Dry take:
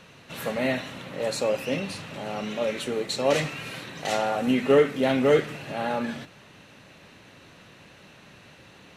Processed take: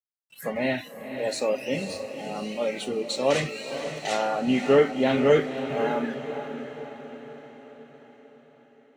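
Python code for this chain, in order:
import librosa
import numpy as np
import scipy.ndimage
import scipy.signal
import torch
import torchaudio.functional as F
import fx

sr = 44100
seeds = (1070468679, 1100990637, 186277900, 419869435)

y = fx.noise_reduce_blind(x, sr, reduce_db=28)
y = np.sign(y) * np.maximum(np.abs(y) - 10.0 ** (-54.0 / 20.0), 0.0)
y = fx.echo_diffused(y, sr, ms=523, feedback_pct=54, wet_db=-9.0)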